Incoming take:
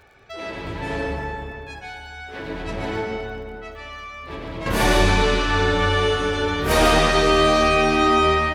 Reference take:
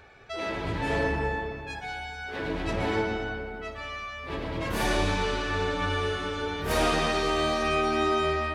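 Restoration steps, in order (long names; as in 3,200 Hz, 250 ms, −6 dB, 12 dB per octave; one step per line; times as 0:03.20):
click removal
echo removal 148 ms −7 dB
level correction −8 dB, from 0:04.66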